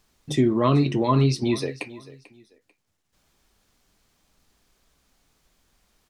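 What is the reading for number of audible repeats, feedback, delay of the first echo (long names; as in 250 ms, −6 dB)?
2, 28%, 442 ms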